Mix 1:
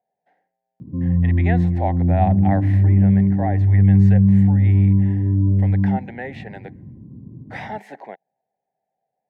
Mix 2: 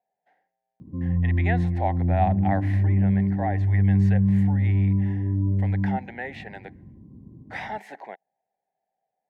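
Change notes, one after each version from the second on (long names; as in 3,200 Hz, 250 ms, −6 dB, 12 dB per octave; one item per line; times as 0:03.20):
master: add graphic EQ with 10 bands 125 Hz −9 dB, 250 Hz −4 dB, 500 Hz −4 dB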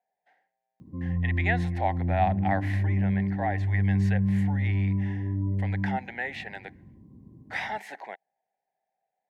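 master: add tilt shelving filter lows −5 dB, about 920 Hz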